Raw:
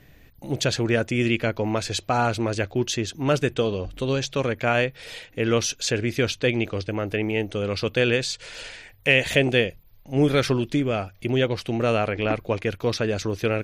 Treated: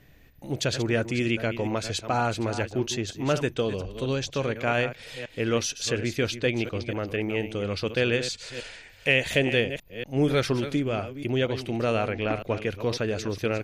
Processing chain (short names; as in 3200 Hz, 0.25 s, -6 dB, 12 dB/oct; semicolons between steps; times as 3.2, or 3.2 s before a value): reverse delay 0.239 s, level -11 dB; gain -3.5 dB